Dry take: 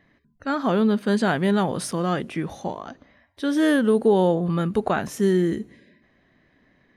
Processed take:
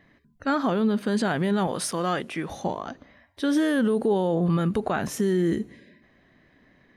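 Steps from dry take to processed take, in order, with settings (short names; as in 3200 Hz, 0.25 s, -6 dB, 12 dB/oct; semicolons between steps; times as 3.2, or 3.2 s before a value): 1.67–2.5 low shelf 330 Hz -10 dB; limiter -17 dBFS, peak gain reduction 8 dB; gain +2 dB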